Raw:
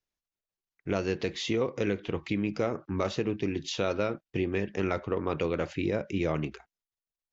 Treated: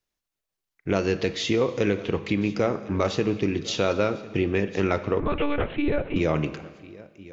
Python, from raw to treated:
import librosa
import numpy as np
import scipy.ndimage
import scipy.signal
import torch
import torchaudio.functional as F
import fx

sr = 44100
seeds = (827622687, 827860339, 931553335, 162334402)

p1 = x + fx.echo_single(x, sr, ms=1052, db=-20.5, dry=0)
p2 = fx.rev_schroeder(p1, sr, rt60_s=1.5, comb_ms=30, drr_db=13.0)
p3 = fx.lpc_monotone(p2, sr, seeds[0], pitch_hz=290.0, order=10, at=(5.2, 6.16))
y = p3 * librosa.db_to_amplitude(5.5)